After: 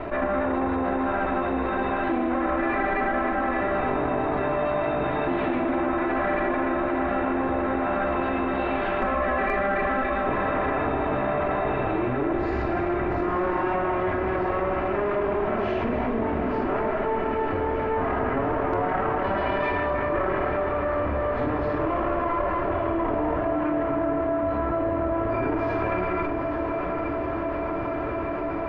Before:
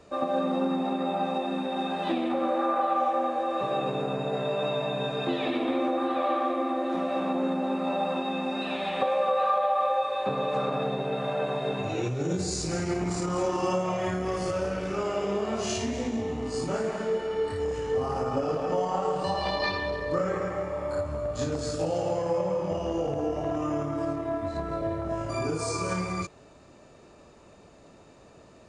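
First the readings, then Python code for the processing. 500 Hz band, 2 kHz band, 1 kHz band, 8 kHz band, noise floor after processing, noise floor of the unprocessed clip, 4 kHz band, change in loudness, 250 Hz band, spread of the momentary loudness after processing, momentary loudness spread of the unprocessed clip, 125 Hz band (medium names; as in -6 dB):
+3.0 dB, +8.5 dB, +4.0 dB, under -30 dB, -28 dBFS, -53 dBFS, -8.5 dB, +3.5 dB, +4.5 dB, 2 LU, 5 LU, +2.0 dB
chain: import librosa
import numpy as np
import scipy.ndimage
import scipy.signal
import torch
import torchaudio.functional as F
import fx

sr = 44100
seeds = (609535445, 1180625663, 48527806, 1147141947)

y = fx.lower_of_two(x, sr, delay_ms=3.0)
y = scipy.signal.sosfilt(scipy.signal.butter(4, 2200.0, 'lowpass', fs=sr, output='sos'), y)
y = np.clip(y, -10.0 ** (-17.0 / 20.0), 10.0 ** (-17.0 / 20.0))
y = fx.doubler(y, sr, ms=44.0, db=-13)
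y = fx.echo_diffused(y, sr, ms=865, feedback_pct=80, wet_db=-11.5)
y = fx.env_flatten(y, sr, amount_pct=70)
y = F.gain(torch.from_numpy(y), 2.0).numpy()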